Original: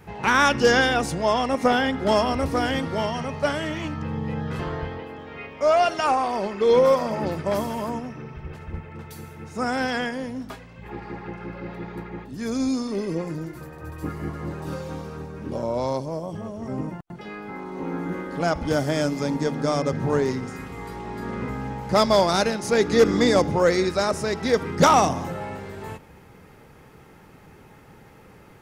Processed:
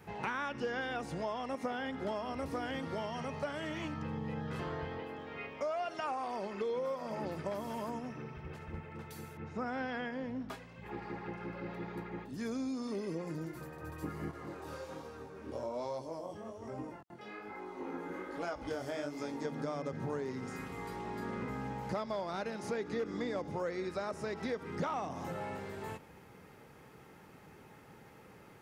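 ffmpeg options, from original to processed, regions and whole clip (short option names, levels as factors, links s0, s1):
-filter_complex "[0:a]asettb=1/sr,asplit=3[s0][s1][s2];[s0]atrim=end=9.374[s3];[s1]atrim=start=9.37:end=10.5,asetpts=PTS-STARTPTS,afade=t=in:d=0.004:c=qsin,afade=t=out:st=1.126:d=0.004:c=qsin,lowpass=3100,lowshelf=f=120:g=6[s4];[s2]atrim=start=10.496[s5];[s3][s4]acrossfade=d=0.004:c1=hsin:c2=qsin[s6];[s6][s5]acrossfade=d=0.004:c1=qsin:c2=hsin,asettb=1/sr,asplit=3[s7][s8][s9];[s7]atrim=end=14.314[s10];[s8]atrim=start=14.31:end=19.45,asetpts=PTS-STARTPTS,afade=t=in:d=0.004:c=qsin,afade=t=out:st=5.136:d=0.004:c=qsin,equalizer=f=170:t=o:w=0.52:g=-12.5,flanger=delay=16.5:depth=7.5:speed=1.2[s11];[s9]atrim=start=19.446[s12];[s10][s11]acrossfade=d=0.004:c1=hsin:c2=qsin[s13];[s13][s12]acrossfade=d=0.004:c1=qsin:c2=hsin,acrossover=split=3300[s14][s15];[s15]acompressor=threshold=0.00794:ratio=4:attack=1:release=60[s16];[s14][s16]amix=inputs=2:normalize=0,highpass=f=120:p=1,acompressor=threshold=0.0355:ratio=5,volume=0.501"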